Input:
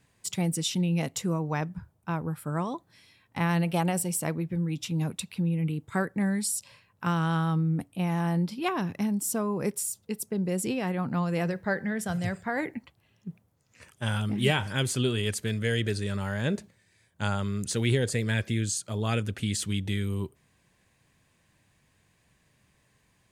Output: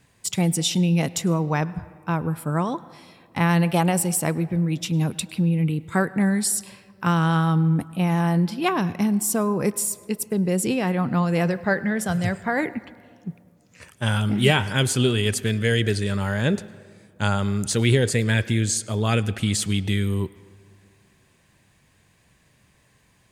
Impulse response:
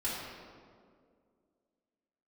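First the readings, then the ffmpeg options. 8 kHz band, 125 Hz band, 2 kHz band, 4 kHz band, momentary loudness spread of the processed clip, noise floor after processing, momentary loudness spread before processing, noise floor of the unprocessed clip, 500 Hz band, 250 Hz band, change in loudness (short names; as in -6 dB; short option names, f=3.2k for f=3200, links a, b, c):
+6.5 dB, +6.5 dB, +6.5 dB, +6.5 dB, 7 LU, -61 dBFS, 7 LU, -68 dBFS, +6.5 dB, +6.5 dB, +6.5 dB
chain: -filter_complex "[0:a]asplit=2[a][b];[b]equalizer=f=1.4k:w=0.31:g=6[c];[1:a]atrim=start_sample=2205,adelay=101[d];[c][d]afir=irnorm=-1:irlink=0,volume=-28.5dB[e];[a][e]amix=inputs=2:normalize=0,volume=6.5dB"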